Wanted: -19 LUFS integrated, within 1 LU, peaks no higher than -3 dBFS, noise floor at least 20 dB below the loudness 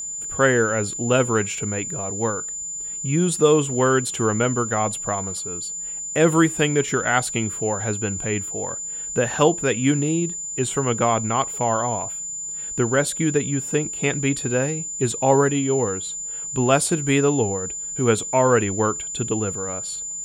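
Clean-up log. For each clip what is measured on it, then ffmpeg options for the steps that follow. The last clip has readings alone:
steady tone 7.1 kHz; tone level -28 dBFS; loudness -21.5 LUFS; peak level -4.0 dBFS; loudness target -19.0 LUFS
-> -af "bandreject=f=7100:w=30"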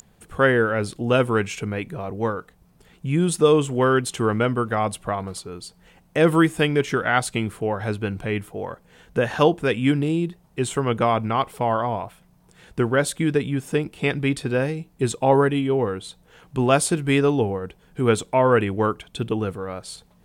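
steady tone not found; loudness -22.5 LUFS; peak level -4.5 dBFS; loudness target -19.0 LUFS
-> -af "volume=1.5,alimiter=limit=0.708:level=0:latency=1"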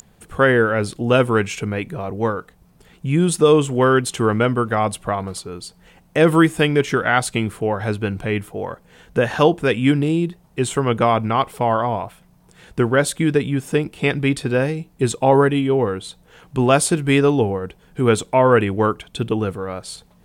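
loudness -19.0 LUFS; peak level -3.0 dBFS; noise floor -54 dBFS

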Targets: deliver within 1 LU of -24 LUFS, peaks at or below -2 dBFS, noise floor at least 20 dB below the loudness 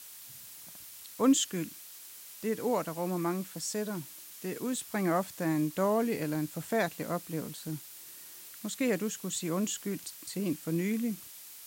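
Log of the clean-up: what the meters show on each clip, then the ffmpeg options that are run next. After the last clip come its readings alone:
noise floor -49 dBFS; noise floor target -53 dBFS; loudness -32.5 LUFS; peak level -15.0 dBFS; loudness target -24.0 LUFS
-> -af "afftdn=nr=6:nf=-49"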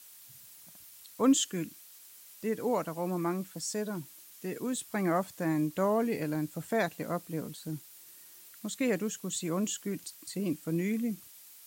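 noise floor -53 dBFS; loudness -33.0 LUFS; peak level -15.5 dBFS; loudness target -24.0 LUFS
-> -af "volume=2.82"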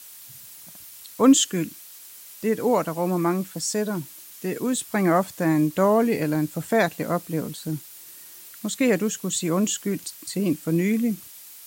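loudness -24.0 LUFS; peak level -6.0 dBFS; noise floor -44 dBFS

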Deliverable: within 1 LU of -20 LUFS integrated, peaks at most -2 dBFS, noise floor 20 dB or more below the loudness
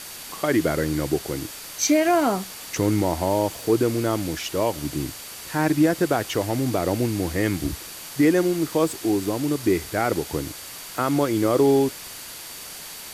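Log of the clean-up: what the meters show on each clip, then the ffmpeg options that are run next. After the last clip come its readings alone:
steady tone 4.6 kHz; tone level -47 dBFS; noise floor -38 dBFS; noise floor target -43 dBFS; loudness -23.0 LUFS; peak level -9.0 dBFS; loudness target -20.0 LUFS
-> -af "bandreject=f=4600:w=30"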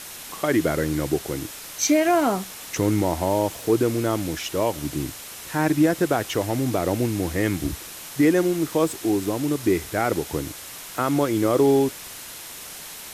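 steady tone not found; noise floor -39 dBFS; noise floor target -43 dBFS
-> -af "afftdn=nr=6:nf=-39"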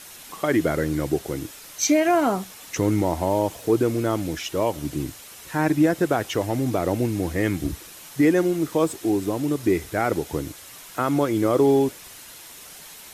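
noise floor -43 dBFS; noise floor target -44 dBFS
-> -af "afftdn=nr=6:nf=-43"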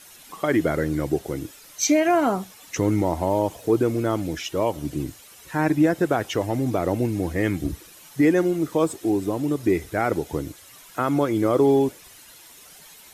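noise floor -48 dBFS; loudness -23.5 LUFS; peak level -9.5 dBFS; loudness target -20.0 LUFS
-> -af "volume=1.5"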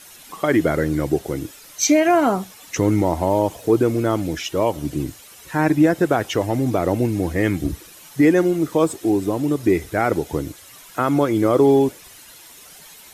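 loudness -20.0 LUFS; peak level -6.0 dBFS; noise floor -44 dBFS

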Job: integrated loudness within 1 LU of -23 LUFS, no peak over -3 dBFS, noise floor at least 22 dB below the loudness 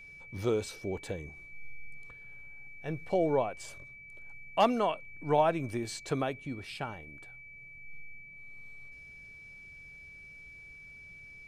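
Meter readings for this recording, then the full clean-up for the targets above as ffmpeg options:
steady tone 2.3 kHz; tone level -48 dBFS; loudness -32.5 LUFS; peak level -14.5 dBFS; loudness target -23.0 LUFS
-> -af "bandreject=f=2300:w=30"
-af "volume=2.99"

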